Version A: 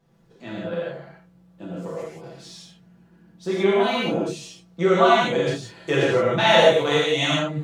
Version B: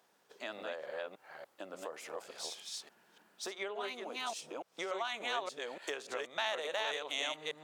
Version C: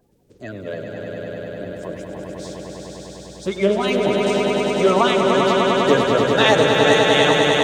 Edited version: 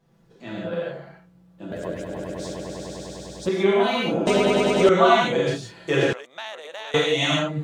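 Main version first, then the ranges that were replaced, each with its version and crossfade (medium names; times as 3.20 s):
A
1.72–3.49 s: from C
4.27–4.89 s: from C
6.13–6.94 s: from B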